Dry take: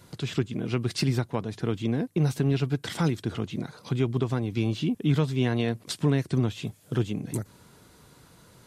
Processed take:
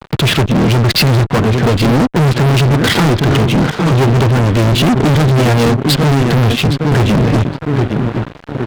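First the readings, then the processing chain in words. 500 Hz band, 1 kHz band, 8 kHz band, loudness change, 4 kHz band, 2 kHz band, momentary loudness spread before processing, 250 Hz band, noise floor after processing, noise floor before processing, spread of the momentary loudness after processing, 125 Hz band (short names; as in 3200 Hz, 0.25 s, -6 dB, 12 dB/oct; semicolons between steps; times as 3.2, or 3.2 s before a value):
+16.5 dB, +22.0 dB, +16.5 dB, +16.0 dB, +20.0 dB, +20.5 dB, 7 LU, +15.0 dB, -33 dBFS, -56 dBFS, 5 LU, +16.5 dB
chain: Wiener smoothing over 9 samples; downsampling 11025 Hz; on a send: darkening echo 0.814 s, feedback 41%, low-pass 2300 Hz, level -13 dB; on the sum: fuzz box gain 40 dB, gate -49 dBFS; gain +4.5 dB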